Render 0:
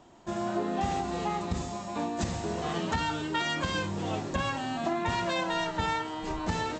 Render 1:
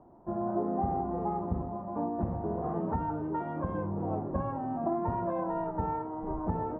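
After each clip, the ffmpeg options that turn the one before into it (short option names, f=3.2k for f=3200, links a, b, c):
-af "lowpass=f=1k:w=0.5412,lowpass=f=1k:w=1.3066"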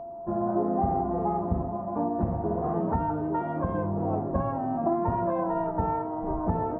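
-af "aeval=exprs='val(0)+0.00891*sin(2*PI*680*n/s)':c=same,volume=4.5dB"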